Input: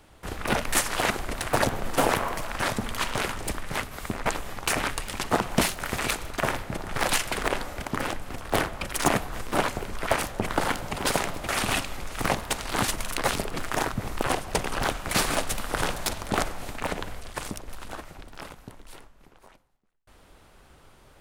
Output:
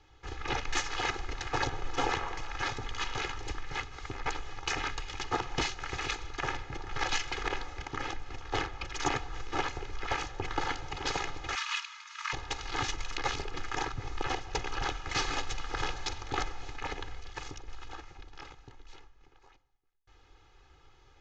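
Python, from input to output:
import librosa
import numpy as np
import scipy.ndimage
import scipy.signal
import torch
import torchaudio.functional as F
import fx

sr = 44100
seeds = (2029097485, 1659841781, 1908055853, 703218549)

y = fx.steep_highpass(x, sr, hz=930.0, slope=96, at=(11.55, 12.33))
y = scipy.signal.sosfilt(scipy.signal.ellip(4, 1.0, 40, 6600.0, 'lowpass', fs=sr, output='sos'), y)
y = fx.peak_eq(y, sr, hz=500.0, db=-5.0, octaves=0.94)
y = y + 1.0 * np.pad(y, (int(2.4 * sr / 1000.0), 0))[:len(y)]
y = y * 10.0 ** (-8.0 / 20.0)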